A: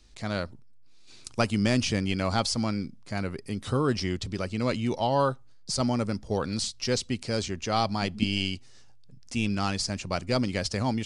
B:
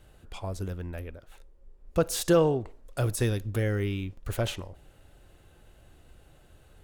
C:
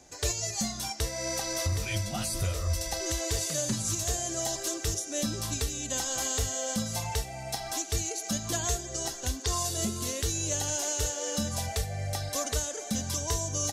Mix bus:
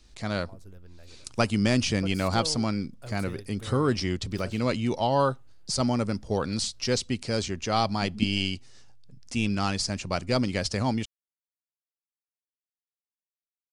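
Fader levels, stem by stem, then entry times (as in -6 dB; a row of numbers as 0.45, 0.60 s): +1.0 dB, -15.0 dB, off; 0.00 s, 0.05 s, off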